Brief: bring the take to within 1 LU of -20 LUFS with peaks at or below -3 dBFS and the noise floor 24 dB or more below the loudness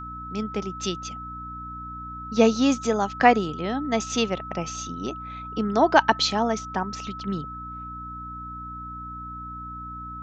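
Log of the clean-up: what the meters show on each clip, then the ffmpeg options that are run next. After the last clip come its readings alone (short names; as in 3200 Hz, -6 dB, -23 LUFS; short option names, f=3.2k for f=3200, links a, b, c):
hum 60 Hz; harmonics up to 300 Hz; hum level -39 dBFS; steady tone 1300 Hz; tone level -35 dBFS; loudness -24.5 LUFS; peak -2.5 dBFS; loudness target -20.0 LUFS
-> -af "bandreject=f=60:t=h:w=4,bandreject=f=120:t=h:w=4,bandreject=f=180:t=h:w=4,bandreject=f=240:t=h:w=4,bandreject=f=300:t=h:w=4"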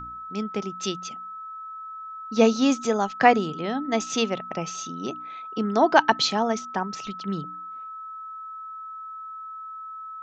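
hum none; steady tone 1300 Hz; tone level -35 dBFS
-> -af "bandreject=f=1.3k:w=30"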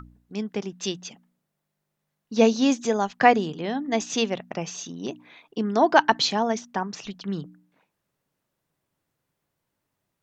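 steady tone none; loudness -24.5 LUFS; peak -2.5 dBFS; loudness target -20.0 LUFS
-> -af "volume=4.5dB,alimiter=limit=-3dB:level=0:latency=1"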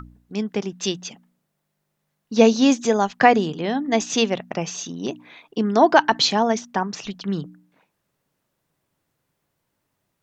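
loudness -20.5 LUFS; peak -3.0 dBFS; noise floor -76 dBFS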